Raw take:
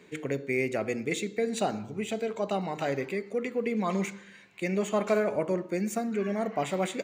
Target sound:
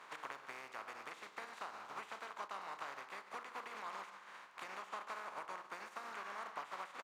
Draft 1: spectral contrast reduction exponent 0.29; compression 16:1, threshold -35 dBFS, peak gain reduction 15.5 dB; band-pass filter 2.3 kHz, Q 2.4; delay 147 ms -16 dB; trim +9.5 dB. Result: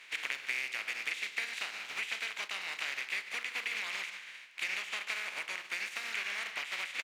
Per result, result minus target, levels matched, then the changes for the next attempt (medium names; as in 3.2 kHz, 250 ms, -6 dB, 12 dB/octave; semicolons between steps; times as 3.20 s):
1 kHz band -14.0 dB; compression: peak gain reduction -8 dB
change: band-pass filter 1.1 kHz, Q 2.4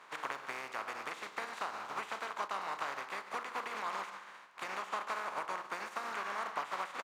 compression: peak gain reduction -8 dB
change: compression 16:1, threshold -43.5 dBFS, peak gain reduction 23.5 dB